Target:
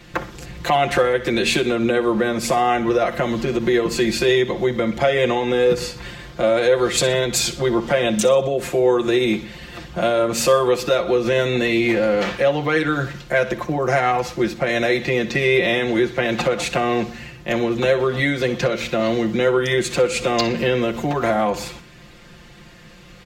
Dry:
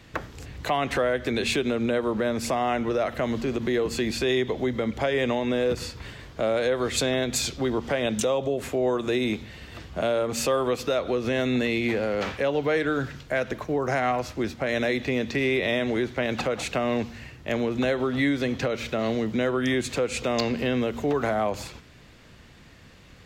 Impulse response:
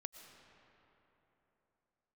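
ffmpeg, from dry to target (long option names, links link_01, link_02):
-filter_complex "[0:a]aecho=1:1:5.7:0.96,asplit=2[link_01][link_02];[link_02]aecho=0:1:61|122|183:0.168|0.0655|0.0255[link_03];[link_01][link_03]amix=inputs=2:normalize=0,volume=4dB"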